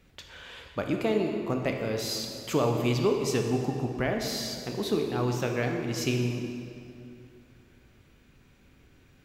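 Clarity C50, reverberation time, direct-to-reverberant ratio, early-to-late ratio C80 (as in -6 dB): 3.5 dB, 2.7 s, 2.5 dB, 5.0 dB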